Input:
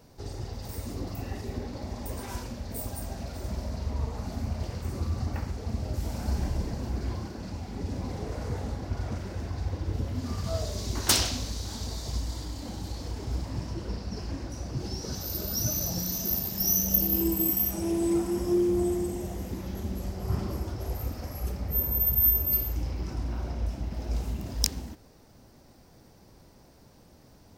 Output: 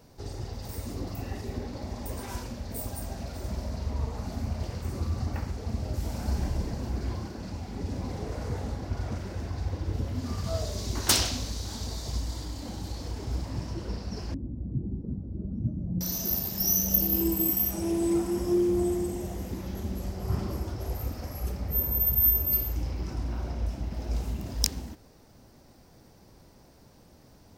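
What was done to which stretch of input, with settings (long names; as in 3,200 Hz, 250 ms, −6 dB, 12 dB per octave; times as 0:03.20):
0:14.34–0:16.01: low-pass with resonance 230 Hz, resonance Q 1.8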